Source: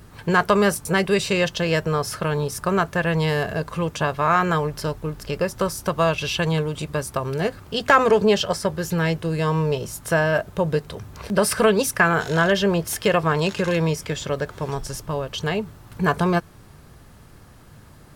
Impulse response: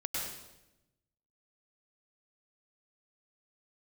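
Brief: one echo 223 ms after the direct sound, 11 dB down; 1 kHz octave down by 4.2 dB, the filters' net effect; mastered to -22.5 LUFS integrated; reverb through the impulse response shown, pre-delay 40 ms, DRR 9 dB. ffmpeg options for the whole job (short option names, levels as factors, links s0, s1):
-filter_complex "[0:a]equalizer=f=1000:t=o:g=-5.5,aecho=1:1:223:0.282,asplit=2[s0][s1];[1:a]atrim=start_sample=2205,adelay=40[s2];[s1][s2]afir=irnorm=-1:irlink=0,volume=0.224[s3];[s0][s3]amix=inputs=2:normalize=0"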